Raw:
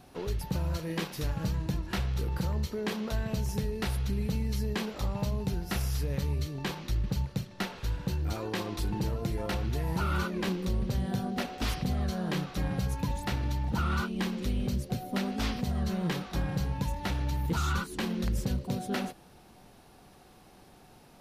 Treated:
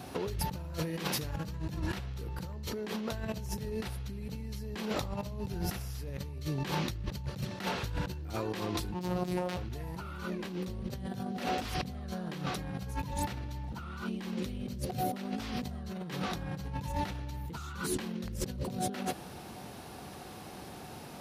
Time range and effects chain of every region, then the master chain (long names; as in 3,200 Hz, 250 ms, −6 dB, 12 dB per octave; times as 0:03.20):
0:08.94–0:09.57: phases set to zero 180 Hz + highs frequency-modulated by the lows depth 0.31 ms
whole clip: high-pass filter 61 Hz 24 dB per octave; compressor whose output falls as the input rises −40 dBFS, ratio −1; level +3 dB